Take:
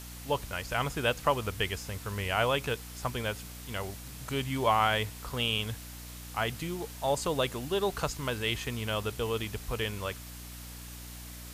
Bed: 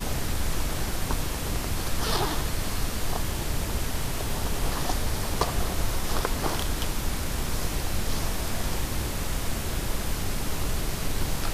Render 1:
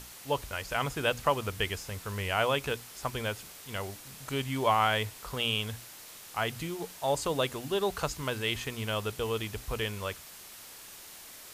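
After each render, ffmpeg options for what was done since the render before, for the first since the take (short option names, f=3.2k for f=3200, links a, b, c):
-af "bandreject=f=60:t=h:w=6,bandreject=f=120:t=h:w=6,bandreject=f=180:t=h:w=6,bandreject=f=240:t=h:w=6,bandreject=f=300:t=h:w=6"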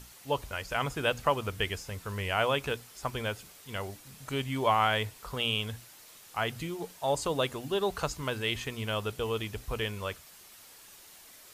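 -af "afftdn=nr=6:nf=-49"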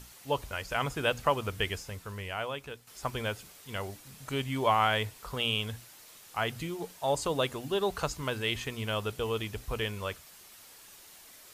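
-filter_complex "[0:a]asplit=2[a][b];[a]atrim=end=2.87,asetpts=PTS-STARTPTS,afade=t=out:st=1.77:d=1.1:c=qua:silence=0.298538[c];[b]atrim=start=2.87,asetpts=PTS-STARTPTS,afade=t=in:d=0.004:c=hsin:silence=0.298538[d];[c][d]concat=n=2:v=0:a=1"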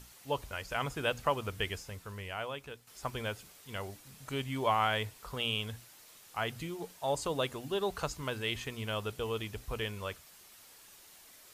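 -af "volume=-3.5dB"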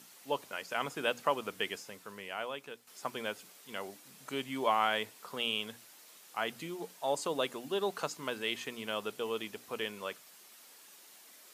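-af "highpass=f=190:w=0.5412,highpass=f=190:w=1.3066"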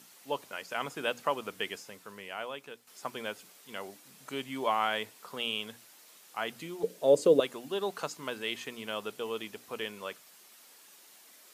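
-filter_complex "[0:a]asettb=1/sr,asplit=3[a][b][c];[a]atrim=end=6.834[d];[b]atrim=start=6.83:end=7.4,asetpts=PTS-STARTPTS,afade=t=in:d=0.004:c=qsin,afade=t=out:st=0.566:d=0.004:c=qsin,lowshelf=f=650:t=q:w=3:g=9[e];[c]atrim=start=7.396[f];[d][e]acrossfade=d=0.004:c1=hsin:c2=qsin[g];[g][f]acrossfade=d=0.004:c1=qsin:c2=hsin"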